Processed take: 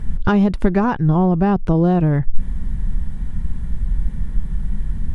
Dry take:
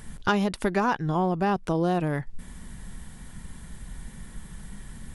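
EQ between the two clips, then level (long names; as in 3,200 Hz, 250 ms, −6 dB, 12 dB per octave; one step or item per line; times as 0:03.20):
RIAA equalisation playback
+3.0 dB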